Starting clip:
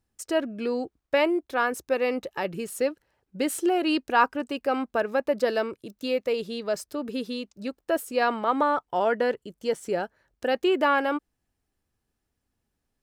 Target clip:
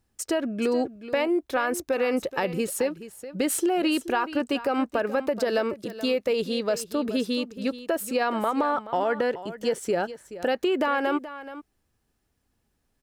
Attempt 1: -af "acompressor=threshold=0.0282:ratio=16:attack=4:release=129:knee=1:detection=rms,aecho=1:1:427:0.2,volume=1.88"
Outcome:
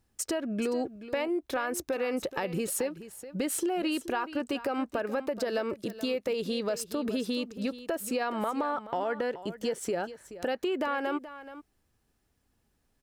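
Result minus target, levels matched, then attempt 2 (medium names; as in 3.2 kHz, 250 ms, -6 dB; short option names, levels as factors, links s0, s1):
compression: peak gain reduction +6 dB
-af "acompressor=threshold=0.0596:ratio=16:attack=4:release=129:knee=1:detection=rms,aecho=1:1:427:0.2,volume=1.88"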